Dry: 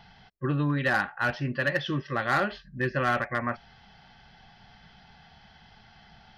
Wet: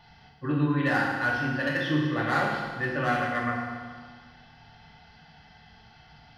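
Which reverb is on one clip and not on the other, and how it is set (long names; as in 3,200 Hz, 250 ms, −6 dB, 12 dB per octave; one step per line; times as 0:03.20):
feedback delay network reverb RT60 1.7 s, low-frequency decay 1.05×, high-frequency decay 0.85×, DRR −4 dB
level −4.5 dB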